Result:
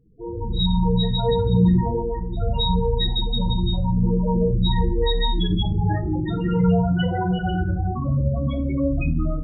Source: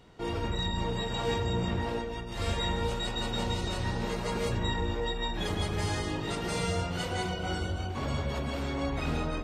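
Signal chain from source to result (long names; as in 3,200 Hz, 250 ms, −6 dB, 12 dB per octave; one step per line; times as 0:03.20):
automatic gain control gain up to 11 dB
dynamic equaliser 440 Hz, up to −4 dB, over −35 dBFS, Q 4.8
spectral peaks only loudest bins 8
on a send: convolution reverb RT60 0.45 s, pre-delay 6 ms, DRR 6 dB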